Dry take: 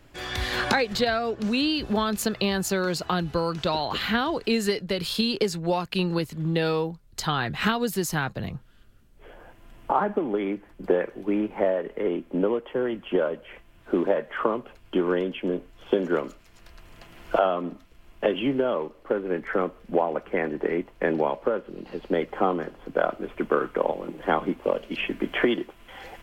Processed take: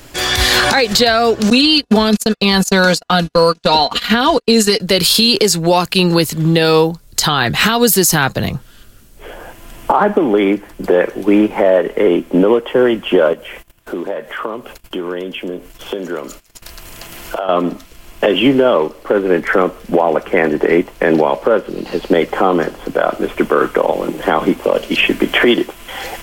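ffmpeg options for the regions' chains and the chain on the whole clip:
-filter_complex "[0:a]asettb=1/sr,asplit=3[s0][s1][s2];[s0]atrim=end=1.504[s3];[s1]atrim=start=1.5:end=4.8,asetpts=PTS-STARTPTS,afade=t=in:d=0.004:c=qsin,afade=t=out:st=3.296:d=0.004:c=qsin,lowpass=12000,agate=range=0.00562:threshold=0.0398:ratio=16:release=100:detection=peak,aecho=1:1:4.2:0.64,atrim=end_sample=145530[s4];[s2]atrim=start=4.796[s5];[s3][s4]acrossfade=d=0.004:c1=hsin:c2=qsin[s6];[s6][s5]acrossfade=d=0.004:c1=qsin:c2=hsin,asettb=1/sr,asplit=3[s7][s8][s9];[s7]atrim=end=13.334[s10];[s8]atrim=start=13.33:end=17.49,asetpts=PTS-STARTPTS,afade=t=in:d=0.004:c=qsin,afade=t=out:st=4.156:d=0.004:c=qsin,agate=range=0.126:threshold=0.00282:ratio=16:release=100:detection=peak,highshelf=f=9100:g=6.5,acompressor=threshold=0.00562:ratio=2:attack=3.2:release=140:knee=1:detection=peak[s11];[s9]atrim=start=17.486[s12];[s10][s11]acrossfade=d=0.004:c1=hsin:c2=qsin[s13];[s13][s12]acrossfade=d=0.004:c1=qsin:c2=hsin,bass=f=250:g=-3,treble=f=4000:g=10,alimiter=level_in=6.68:limit=0.891:release=50:level=0:latency=1,volume=0.891"

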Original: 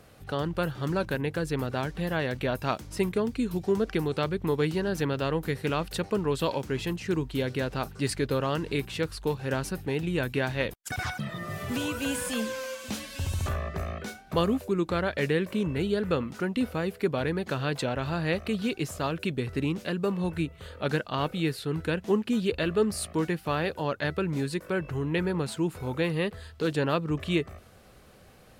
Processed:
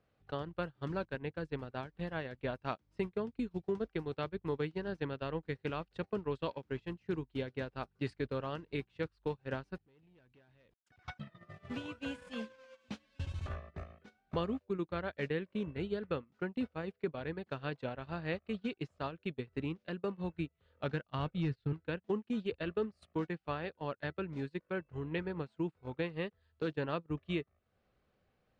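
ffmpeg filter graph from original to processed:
-filter_complex "[0:a]asettb=1/sr,asplit=3[s0][s1][s2];[s0]atrim=end=9.784[s3];[s1]atrim=start=9.78:end=11.08,asetpts=PTS-STARTPTS,afade=t=in:d=0.004:c=qsin,afade=t=out:st=1.296:d=0.004:c=qsin,agate=range=0.0224:threshold=0.0112:ratio=3:release=100:detection=peak,acompressor=threshold=0.00794:ratio=2:attack=3.2:release=140:knee=1:detection=peak,asoftclip=type=hard:threshold=0.0168[s4];[s2]atrim=start=11.076[s5];[s3][s4]acrossfade=d=0.004:c1=hsin:c2=qsin[s6];[s6][s5]acrossfade=d=0.004:c1=qsin:c2=hsin,asettb=1/sr,asplit=3[s7][s8][s9];[s7]atrim=end=20.734[s10];[s8]atrim=start=20.73:end=21.73,asetpts=PTS-STARTPTS,afade=t=in:d=0.004:c=qsin,afade=t=out:st=0.996:d=0.004:c=qsin,asubboost=boost=10.5:cutoff=220,adynamicsmooth=sensitivity=7.5:basefreq=5600,asoftclip=type=hard:threshold=0.133[s11];[s9]atrim=start=21.726[s12];[s10][s11]acrossfade=d=0.004:c1=hsin:c2=qsin[s13];[s13][s12]acrossfade=d=0.004:c1=qsin:c2=hsin,acompressor=threshold=0.00562:ratio=3,agate=range=0.0355:threshold=0.00891:ratio=16:detection=peak,lowpass=3700,volume=2.37"

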